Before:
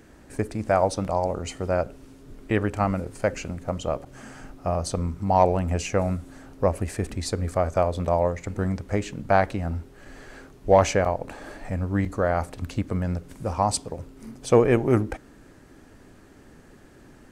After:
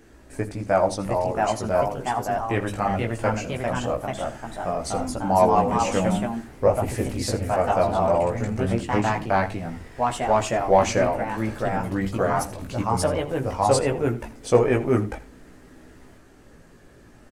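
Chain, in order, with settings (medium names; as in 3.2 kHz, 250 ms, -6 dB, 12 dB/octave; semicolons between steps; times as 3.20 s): chorus voices 4, 0.17 Hz, delay 18 ms, depth 2.5 ms; ever faster or slower copies 753 ms, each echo +2 st, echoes 2; hum notches 50/100/150/200 Hz; on a send: delay 82 ms -17 dB; on the sum: trim +3 dB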